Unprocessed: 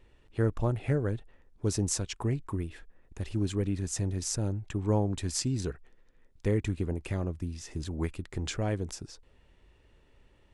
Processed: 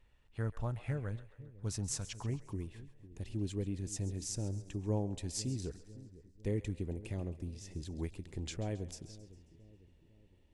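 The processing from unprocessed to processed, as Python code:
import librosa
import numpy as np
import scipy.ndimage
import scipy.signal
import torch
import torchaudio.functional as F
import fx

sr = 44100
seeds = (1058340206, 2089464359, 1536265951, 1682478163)

y = fx.peak_eq(x, sr, hz=fx.steps((0.0, 360.0), (2.29, 1300.0)), db=-9.5, octaves=1.0)
y = fx.echo_split(y, sr, split_hz=480.0, low_ms=502, high_ms=135, feedback_pct=52, wet_db=-16)
y = y * 10.0 ** (-7.0 / 20.0)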